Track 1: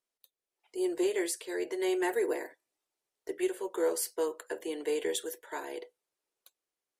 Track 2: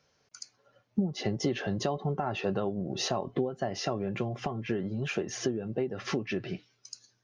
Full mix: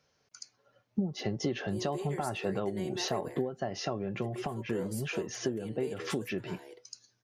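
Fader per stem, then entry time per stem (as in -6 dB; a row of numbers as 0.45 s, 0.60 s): -10.5 dB, -2.5 dB; 0.95 s, 0.00 s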